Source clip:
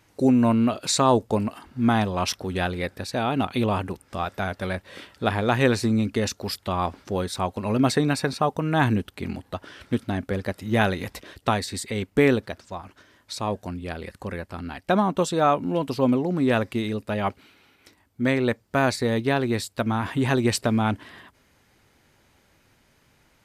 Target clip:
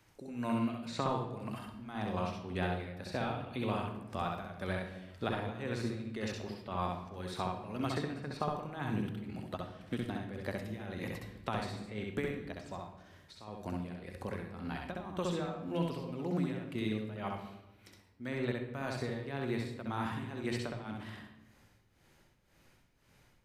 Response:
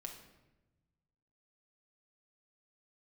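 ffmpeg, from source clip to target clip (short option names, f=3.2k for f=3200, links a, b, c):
-filter_complex "[0:a]acrossover=split=160|1200|3300[a][b][c][d];[a]acompressor=threshold=-39dB:ratio=4[e];[b]acompressor=threshold=-29dB:ratio=4[f];[c]acompressor=threshold=-36dB:ratio=4[g];[d]acompressor=threshold=-50dB:ratio=4[h];[e][f][g][h]amix=inputs=4:normalize=0,tremolo=f=1.9:d=0.84,asplit=2[i][j];[1:a]atrim=start_sample=2205,lowshelf=f=100:g=8,adelay=65[k];[j][k]afir=irnorm=-1:irlink=0,volume=2.5dB[l];[i][l]amix=inputs=2:normalize=0,volume=-6dB"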